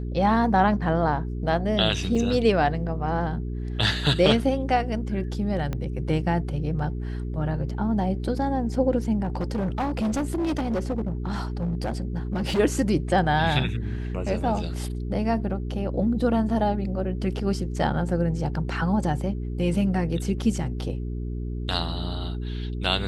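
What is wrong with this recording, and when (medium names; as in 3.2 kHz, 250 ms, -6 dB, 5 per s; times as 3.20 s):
hum 60 Hz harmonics 7 -30 dBFS
2.15 s: dropout 4 ms
5.73 s: pop -17 dBFS
9.23–12.60 s: clipped -22 dBFS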